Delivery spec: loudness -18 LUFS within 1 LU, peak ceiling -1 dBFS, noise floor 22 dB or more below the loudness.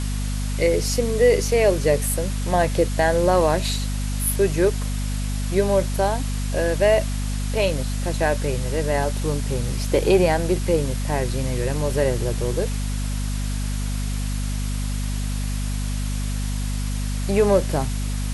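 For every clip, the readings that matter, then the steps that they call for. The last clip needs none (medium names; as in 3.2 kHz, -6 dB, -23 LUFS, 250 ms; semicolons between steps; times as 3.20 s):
hum 50 Hz; highest harmonic 250 Hz; hum level -22 dBFS; noise floor -25 dBFS; noise floor target -45 dBFS; loudness -22.5 LUFS; peak level -5.5 dBFS; loudness target -18.0 LUFS
-> de-hum 50 Hz, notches 5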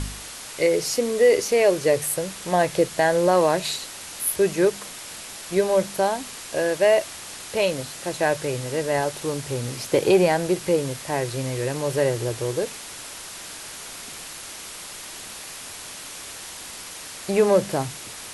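hum not found; noise floor -38 dBFS; noise floor target -45 dBFS
-> noise print and reduce 7 dB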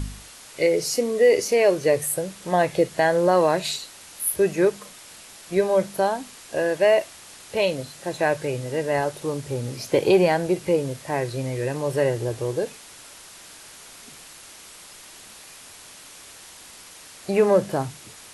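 noise floor -45 dBFS; loudness -23.0 LUFS; peak level -7.0 dBFS; loudness target -18.0 LUFS
-> trim +5 dB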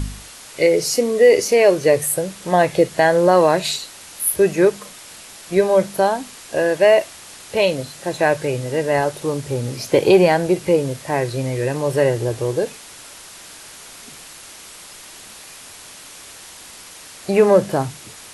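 loudness -18.0 LUFS; peak level -2.0 dBFS; noise floor -40 dBFS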